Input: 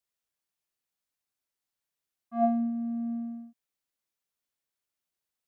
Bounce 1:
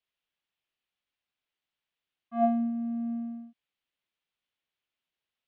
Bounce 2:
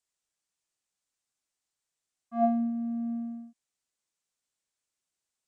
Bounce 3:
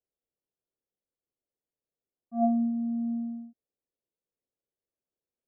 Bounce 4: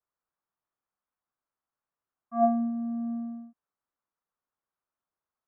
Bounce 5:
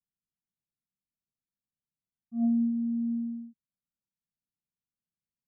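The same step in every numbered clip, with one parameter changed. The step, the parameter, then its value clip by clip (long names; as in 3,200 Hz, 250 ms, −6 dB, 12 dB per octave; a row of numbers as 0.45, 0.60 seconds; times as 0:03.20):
low-pass with resonance, frequency: 3,100, 7,900, 480, 1,200, 190 Hertz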